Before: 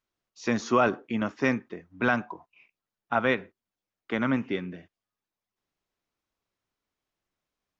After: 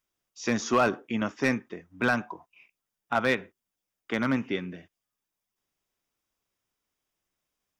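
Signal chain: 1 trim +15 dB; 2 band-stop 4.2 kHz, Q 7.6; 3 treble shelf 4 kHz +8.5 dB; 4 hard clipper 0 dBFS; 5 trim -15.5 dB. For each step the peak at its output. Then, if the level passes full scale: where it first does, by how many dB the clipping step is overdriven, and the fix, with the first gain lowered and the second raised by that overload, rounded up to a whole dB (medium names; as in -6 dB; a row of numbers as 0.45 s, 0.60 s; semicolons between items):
+5.5 dBFS, +5.5 dBFS, +6.5 dBFS, 0.0 dBFS, -15.5 dBFS; step 1, 6.5 dB; step 1 +8 dB, step 5 -8.5 dB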